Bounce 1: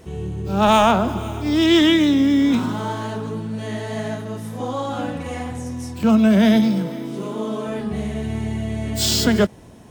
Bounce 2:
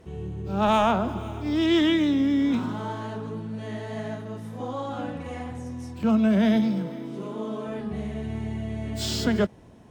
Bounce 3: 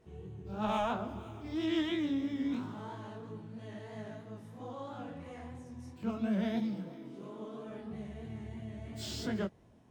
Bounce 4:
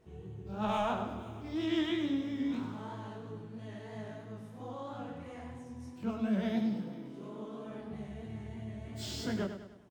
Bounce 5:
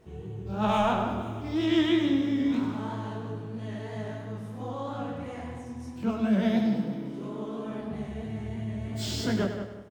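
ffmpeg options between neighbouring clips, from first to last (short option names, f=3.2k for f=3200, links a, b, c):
-af "aemphasis=mode=reproduction:type=cd,volume=-6.5dB"
-af "flanger=delay=18.5:depth=7.1:speed=3,volume=-9dB"
-af "aecho=1:1:101|202|303|404|505:0.355|0.167|0.0784|0.0368|0.0173"
-filter_complex "[0:a]asplit=2[a][b];[b]adelay=173,lowpass=f=2.4k:p=1,volume=-8.5dB,asplit=2[c][d];[d]adelay=173,lowpass=f=2.4k:p=1,volume=0.3,asplit=2[e][f];[f]adelay=173,lowpass=f=2.4k:p=1,volume=0.3,asplit=2[g][h];[h]adelay=173,lowpass=f=2.4k:p=1,volume=0.3[i];[a][c][e][g][i]amix=inputs=5:normalize=0,volume=7dB"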